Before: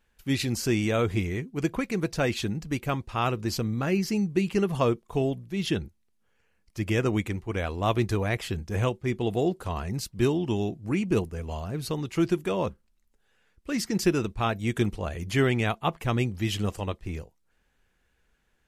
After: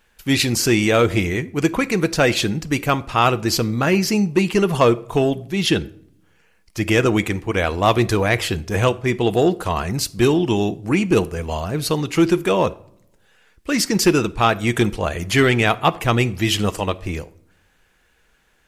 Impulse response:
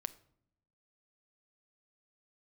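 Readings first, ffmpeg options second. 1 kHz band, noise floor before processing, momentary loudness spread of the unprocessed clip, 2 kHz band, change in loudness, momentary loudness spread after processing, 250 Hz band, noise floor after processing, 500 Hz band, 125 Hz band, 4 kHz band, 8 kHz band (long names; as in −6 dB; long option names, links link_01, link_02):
+11.0 dB, −70 dBFS, 8 LU, +11.5 dB, +9.0 dB, 7 LU, +8.0 dB, −60 dBFS, +9.5 dB, +6.5 dB, +12.0 dB, +12.5 dB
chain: -filter_complex "[0:a]asoftclip=type=tanh:threshold=-14.5dB,asplit=2[link_01][link_02];[1:a]atrim=start_sample=2205,lowshelf=frequency=260:gain=-11[link_03];[link_02][link_03]afir=irnorm=-1:irlink=0,volume=11dB[link_04];[link_01][link_04]amix=inputs=2:normalize=0,volume=1dB"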